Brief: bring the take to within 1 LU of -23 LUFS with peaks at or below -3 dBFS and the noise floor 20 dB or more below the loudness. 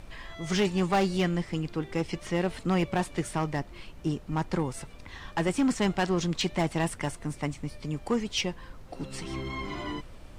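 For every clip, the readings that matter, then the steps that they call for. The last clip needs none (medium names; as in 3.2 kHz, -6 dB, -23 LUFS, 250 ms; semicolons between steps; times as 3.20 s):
clipped samples 1.1%; clipping level -19.5 dBFS; noise floor -47 dBFS; noise floor target -50 dBFS; loudness -30.0 LUFS; peak level -19.5 dBFS; loudness target -23.0 LUFS
-> clip repair -19.5 dBFS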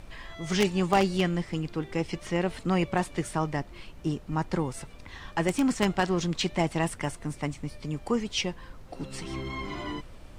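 clipped samples 0.0%; noise floor -47 dBFS; noise floor target -50 dBFS
-> noise print and reduce 6 dB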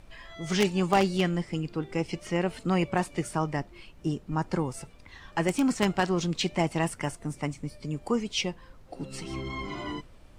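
noise floor -52 dBFS; loudness -29.5 LUFS; peak level -10.5 dBFS; loudness target -23.0 LUFS
-> trim +6.5 dB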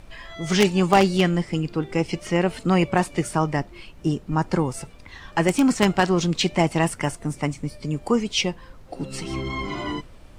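loudness -23.0 LUFS; peak level -4.0 dBFS; noise floor -45 dBFS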